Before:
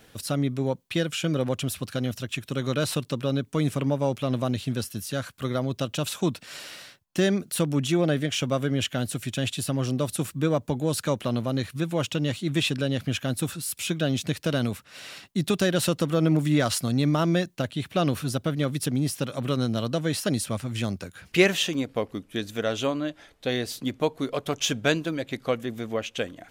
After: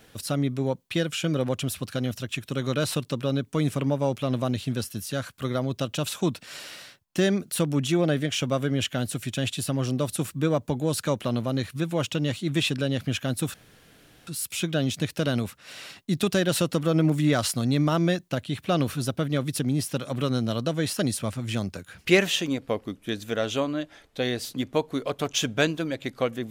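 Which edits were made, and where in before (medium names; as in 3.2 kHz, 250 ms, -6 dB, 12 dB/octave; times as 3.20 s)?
13.54 s: insert room tone 0.73 s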